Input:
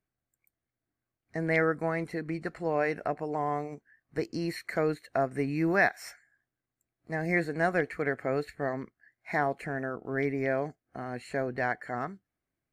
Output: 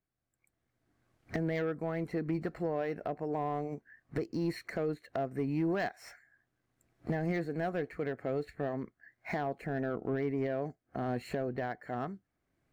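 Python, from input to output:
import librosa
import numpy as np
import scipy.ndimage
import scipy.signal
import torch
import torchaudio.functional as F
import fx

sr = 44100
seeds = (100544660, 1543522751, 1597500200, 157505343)

y = fx.recorder_agc(x, sr, target_db=-18.0, rise_db_per_s=17.0, max_gain_db=30)
y = fx.high_shelf(y, sr, hz=3200.0, db=-8.0)
y = 10.0 ** (-20.0 / 20.0) * np.tanh(y / 10.0 ** (-20.0 / 20.0))
y = fx.dynamic_eq(y, sr, hz=1700.0, q=0.73, threshold_db=-44.0, ratio=4.0, max_db=-6)
y = np.interp(np.arange(len(y)), np.arange(len(y))[::2], y[::2])
y = y * 10.0 ** (-3.0 / 20.0)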